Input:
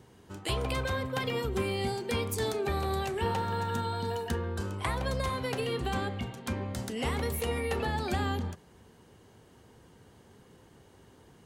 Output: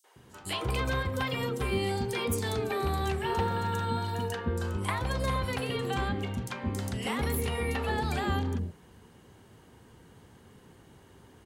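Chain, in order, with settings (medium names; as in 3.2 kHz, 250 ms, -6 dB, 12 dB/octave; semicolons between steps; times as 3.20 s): in parallel at -9 dB: saturation -27 dBFS, distortion -15 dB; on the sum: three bands offset in time highs, mids, lows 40/160 ms, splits 530/5400 Hz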